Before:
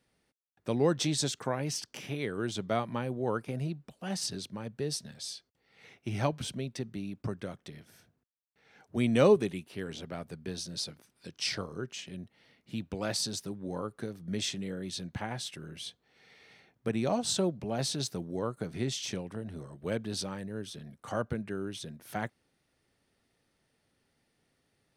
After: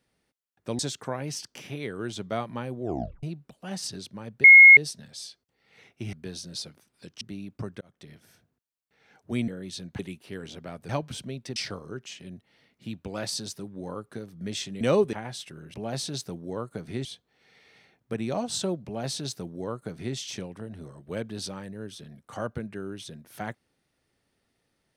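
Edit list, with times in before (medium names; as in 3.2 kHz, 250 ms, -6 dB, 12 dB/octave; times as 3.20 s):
0.79–1.18 s: delete
3.21 s: tape stop 0.41 s
4.83 s: add tone 2.16 kHz -7 dBFS 0.33 s
6.19–6.86 s: swap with 10.35–11.43 s
7.46–7.76 s: fade in
9.13–9.45 s: swap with 14.68–15.19 s
17.60–18.91 s: copy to 15.80 s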